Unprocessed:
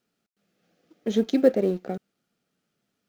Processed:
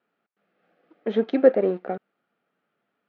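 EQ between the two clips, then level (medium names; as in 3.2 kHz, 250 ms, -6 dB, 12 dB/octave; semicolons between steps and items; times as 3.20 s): band-pass filter 1.2 kHz, Q 0.65; distance through air 340 m; +8.5 dB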